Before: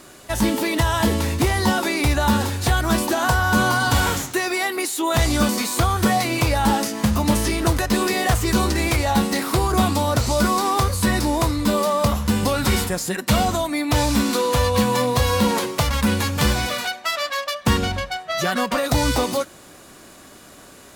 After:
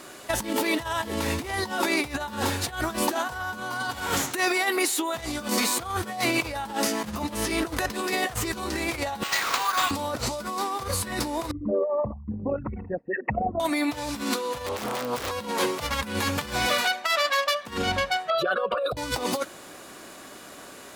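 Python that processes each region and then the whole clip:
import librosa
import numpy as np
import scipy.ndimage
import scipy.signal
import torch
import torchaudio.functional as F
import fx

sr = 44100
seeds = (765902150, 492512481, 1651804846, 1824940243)

y = fx.chain(x, sr, fx.highpass(hz=1000.0, slope=24),
    fx.resample_bad(factor=4, down='none', up='hold'), at=(9.23, 9.91))
y = fx.chain(y, sr, fx.envelope_sharpen(power=3.0),
    fx.cheby_ripple(hz=2700.0, ripple_db=9), at=(11.51, 13.6))
y = fx.chain(y, sr, fx.overflow_wrap(gain_db=11.0),
    fx.doppler_dist(depth_ms=0.78), at=(14.66, 15.31))
y = fx.chain(y, sr, fx.envelope_sharpen(power=2.0),
    fx.fixed_phaser(hz=1300.0, stages=8), at=(18.3, 18.97))
y = fx.bass_treble(y, sr, bass_db=-2, treble_db=-3)
y = fx.over_compress(y, sr, threshold_db=-24.0, ratio=-0.5)
y = fx.low_shelf(y, sr, hz=140.0, db=-11.0)
y = F.gain(torch.from_numpy(y), -1.0).numpy()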